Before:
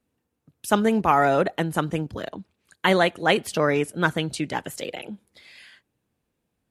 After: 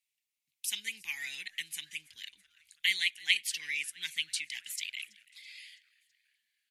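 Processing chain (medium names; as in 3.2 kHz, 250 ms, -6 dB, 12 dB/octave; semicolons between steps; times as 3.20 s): elliptic high-pass 2.1 kHz, stop band 40 dB; on a send: frequency-shifting echo 329 ms, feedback 58%, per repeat -110 Hz, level -23.5 dB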